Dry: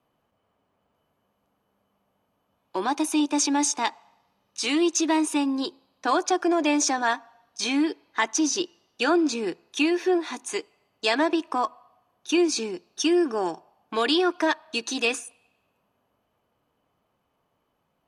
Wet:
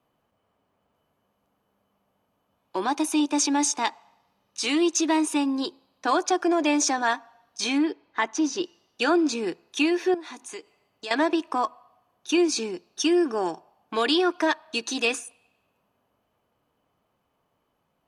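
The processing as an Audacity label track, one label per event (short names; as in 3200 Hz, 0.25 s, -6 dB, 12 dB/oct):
7.780000	8.630000	LPF 2500 Hz 6 dB/oct
10.140000	11.110000	compressor 2:1, threshold -41 dBFS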